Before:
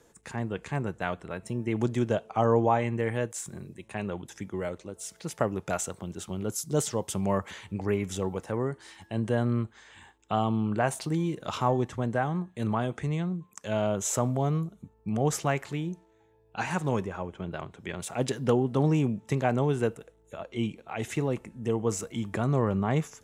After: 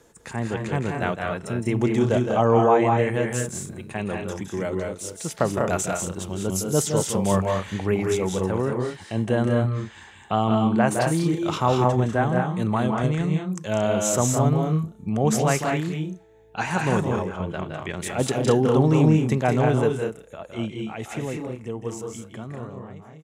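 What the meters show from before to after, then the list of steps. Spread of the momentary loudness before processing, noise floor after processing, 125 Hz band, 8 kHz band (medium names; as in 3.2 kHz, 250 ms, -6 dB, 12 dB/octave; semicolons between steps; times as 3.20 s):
12 LU, -47 dBFS, +6.0 dB, +6.5 dB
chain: fade out at the end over 4.03 s; loudspeakers at several distances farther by 56 m -7 dB, 67 m -4 dB, 78 m -9 dB; trim +4.5 dB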